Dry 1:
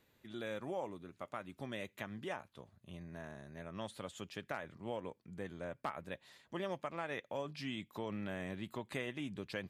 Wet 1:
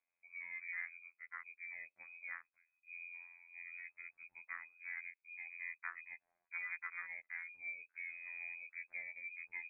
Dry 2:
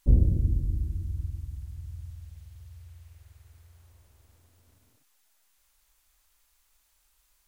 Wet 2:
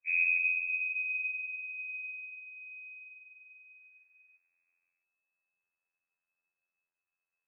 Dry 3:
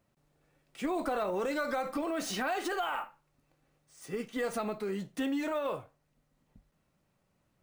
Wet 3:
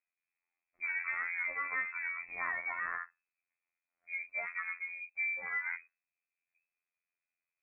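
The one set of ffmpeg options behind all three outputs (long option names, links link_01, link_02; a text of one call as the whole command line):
ffmpeg -i in.wav -af "afwtdn=0.0112,aresample=16000,asoftclip=type=tanh:threshold=-19.5dB,aresample=44100,afftfilt=real='hypot(re,im)*cos(PI*b)':imag='0':win_size=2048:overlap=0.75,lowpass=frequency=2200:width_type=q:width=0.5098,lowpass=frequency=2200:width_type=q:width=0.6013,lowpass=frequency=2200:width_type=q:width=0.9,lowpass=frequency=2200:width_type=q:width=2.563,afreqshift=-2600" out.wav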